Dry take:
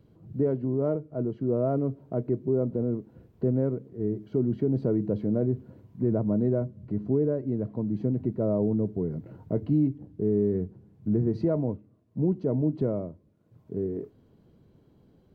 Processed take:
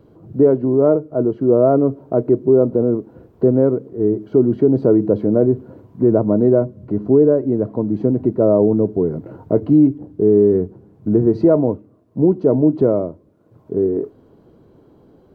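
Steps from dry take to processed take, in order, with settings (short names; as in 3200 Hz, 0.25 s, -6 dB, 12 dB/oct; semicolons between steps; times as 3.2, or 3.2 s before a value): band shelf 630 Hz +8 dB 2.7 oct; gain +6 dB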